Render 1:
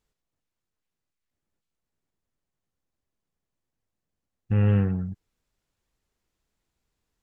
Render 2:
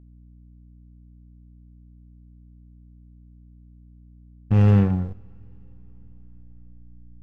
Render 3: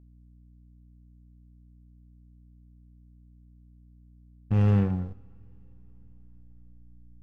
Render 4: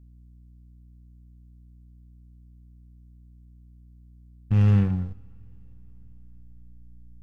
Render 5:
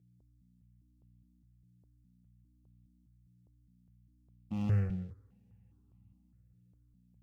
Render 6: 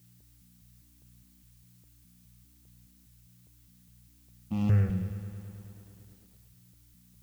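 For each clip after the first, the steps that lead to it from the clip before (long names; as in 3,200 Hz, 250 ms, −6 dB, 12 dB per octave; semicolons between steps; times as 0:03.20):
slack as between gear wheels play −26.5 dBFS; mains hum 60 Hz, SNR 22 dB; coupled-rooms reverb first 0.57 s, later 5 s, from −22 dB, DRR 16 dB; level +5.5 dB
tuned comb filter 54 Hz, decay 0.76 s, harmonics odd, mix 40%; level −1.5 dB
parametric band 570 Hz −8.5 dB 2.4 octaves; level +4.5 dB
high-pass filter 78 Hz 24 dB per octave; step-sequenced phaser 4.9 Hz 260–1,600 Hz; level −6.5 dB
background noise blue −70 dBFS; feedback echo at a low word length 107 ms, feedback 80%, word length 10 bits, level −13.5 dB; level +5 dB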